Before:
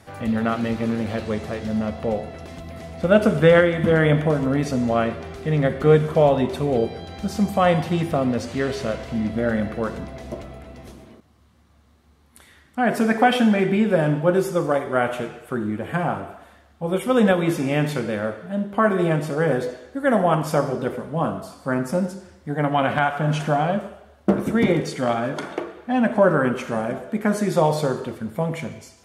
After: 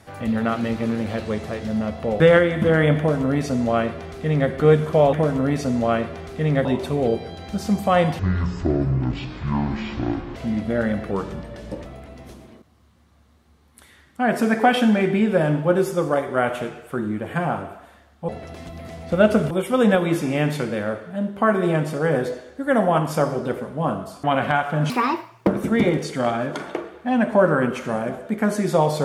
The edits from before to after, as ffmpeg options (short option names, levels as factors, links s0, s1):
-filter_complex "[0:a]asplit=13[s0][s1][s2][s3][s4][s5][s6][s7][s8][s9][s10][s11][s12];[s0]atrim=end=2.202[s13];[s1]atrim=start=3.418:end=6.352[s14];[s2]atrim=start=4.198:end=5.722[s15];[s3]atrim=start=6.348:end=7.894[s16];[s4]atrim=start=7.89:end=9.04,asetpts=PTS-STARTPTS,asetrate=23373,aresample=44100[s17];[s5]atrim=start=9.036:end=9.794[s18];[s6]atrim=start=9.79:end=10.44,asetpts=PTS-STARTPTS,asetrate=38367,aresample=44100,atrim=end_sample=32948,asetpts=PTS-STARTPTS[s19];[s7]atrim=start=10.436:end=16.872[s20];[s8]atrim=start=2.198:end=3.422[s21];[s9]atrim=start=16.868:end=21.602[s22];[s10]atrim=start=22.708:end=23.374[s23];[s11]atrim=start=23.37:end=24.3,asetpts=PTS-STARTPTS,asetrate=71442,aresample=44100[s24];[s12]atrim=start=24.296[s25];[s13][s14]acrossfade=d=0.004:c1=hsin:c2=hsin[s26];[s26][s15]acrossfade=d=0.004:c1=hsin:c2=hsin[s27];[s27][s16]acrossfade=d=0.004:c1=hsin:c2=hsin[s28];[s28][s17]acrossfade=d=0.004:c1=hsin:c2=hsin[s29];[s29][s18]acrossfade=d=0.004:c1=hsin:c2=hsin[s30];[s30][s19]acrossfade=d=0.004:c1=hsin:c2=hsin[s31];[s31][s20]acrossfade=d=0.004:c1=hsin:c2=hsin[s32];[s32][s21]acrossfade=d=0.004:c1=hsin:c2=hsin[s33];[s33][s22]acrossfade=d=0.004:c1=hsin:c2=hsin[s34];[s34][s23]acrossfade=d=0.004:c1=hsin:c2=hsin[s35];[s35][s24]acrossfade=d=0.004:c1=hsin:c2=hsin[s36];[s36][s25]acrossfade=d=0.004:c1=hsin:c2=hsin"